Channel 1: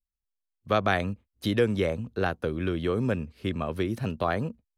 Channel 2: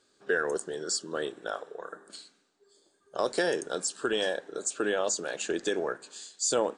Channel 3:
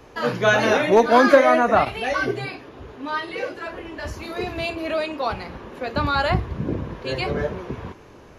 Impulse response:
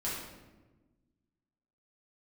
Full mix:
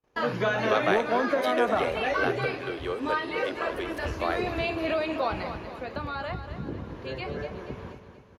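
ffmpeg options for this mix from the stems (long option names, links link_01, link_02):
-filter_complex "[0:a]highpass=frequency=380:width=0.5412,highpass=frequency=380:width=1.3066,volume=-1.5dB,asplit=2[link_01][link_02];[link_02]volume=-14dB[link_03];[2:a]acompressor=threshold=-23dB:ratio=6,agate=range=-10dB:threshold=-41dB:ratio=16:detection=peak,acrossover=split=4200[link_04][link_05];[link_05]acompressor=threshold=-54dB:ratio=4:attack=1:release=60[link_06];[link_04][link_06]amix=inputs=2:normalize=0,volume=-0.5dB,afade=type=out:start_time=5.41:duration=0.36:silence=0.473151,asplit=2[link_07][link_08];[link_08]volume=-10dB[link_09];[link_03][link_09]amix=inputs=2:normalize=0,aecho=0:1:239|478|717|956|1195|1434|1673:1|0.48|0.23|0.111|0.0531|0.0255|0.0122[link_10];[link_01][link_07][link_10]amix=inputs=3:normalize=0,agate=range=-32dB:threshold=-55dB:ratio=16:detection=peak"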